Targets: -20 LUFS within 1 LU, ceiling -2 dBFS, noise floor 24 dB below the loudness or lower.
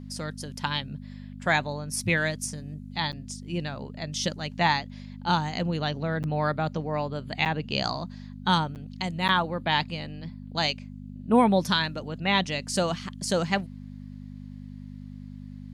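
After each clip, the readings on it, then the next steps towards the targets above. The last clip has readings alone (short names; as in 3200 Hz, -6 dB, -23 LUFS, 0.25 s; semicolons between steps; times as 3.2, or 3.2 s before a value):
dropouts 5; longest dropout 8.8 ms; hum 50 Hz; harmonics up to 250 Hz; hum level -38 dBFS; loudness -27.5 LUFS; peak -9.5 dBFS; loudness target -20.0 LUFS
-> interpolate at 3.12/6.23/7.45/8.75/9.28, 8.8 ms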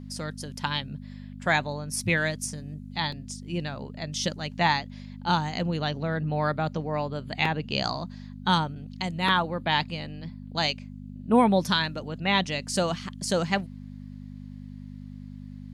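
dropouts 0; hum 50 Hz; harmonics up to 250 Hz; hum level -38 dBFS
-> de-hum 50 Hz, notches 5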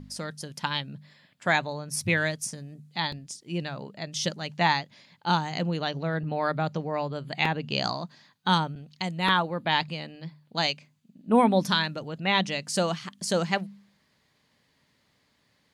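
hum none; loudness -28.0 LUFS; peak -9.0 dBFS; loudness target -20.0 LUFS
-> gain +8 dB; limiter -2 dBFS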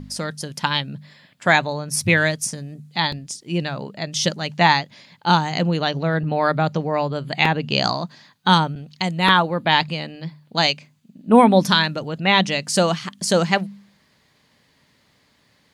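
loudness -20.0 LUFS; peak -2.0 dBFS; noise floor -61 dBFS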